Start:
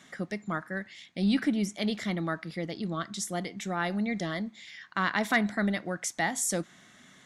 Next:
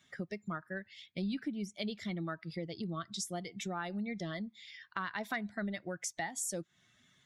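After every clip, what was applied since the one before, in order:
spectral dynamics exaggerated over time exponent 1.5
downward compressor 4 to 1, threshold −42 dBFS, peak gain reduction 17 dB
level +5 dB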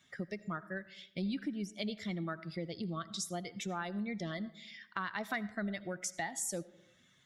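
comb and all-pass reverb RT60 0.85 s, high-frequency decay 0.45×, pre-delay 40 ms, DRR 17 dB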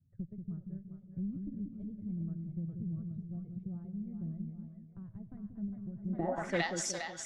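harmonic generator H 4 −23 dB, 7 −29 dB, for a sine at −19.5 dBFS
echo with a time of its own for lows and highs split 540 Hz, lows 184 ms, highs 406 ms, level −5 dB
low-pass filter sweep 110 Hz → 5,300 Hz, 0:06.00–0:06.68
level +7.5 dB

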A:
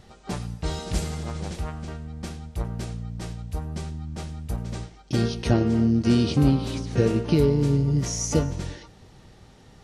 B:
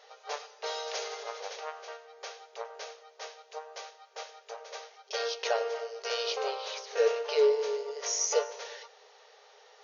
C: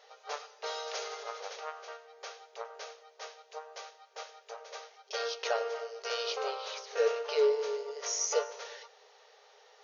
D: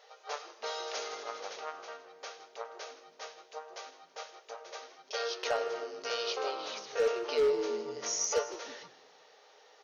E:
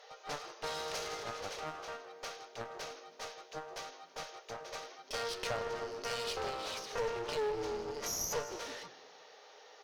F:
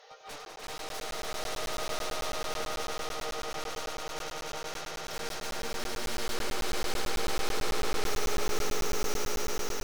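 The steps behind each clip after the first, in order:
brick-wall band-pass 400–6,800 Hz
dynamic equaliser 1,300 Hz, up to +6 dB, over −57 dBFS, Q 5.5; level −2.5 dB
hard clipping −22.5 dBFS, distortion −19 dB; echo with shifted repeats 161 ms, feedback 32%, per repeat −99 Hz, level −16 dB
downward compressor 2 to 1, threshold −36 dBFS, peak gain reduction 6.5 dB; asymmetric clip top −48 dBFS; level +3 dB
wave folding −39 dBFS; echo that builds up and dies away 98 ms, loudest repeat 8, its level −3 dB; regular buffer underruns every 0.11 s, samples 512, zero, from 0:00.45; level +1 dB

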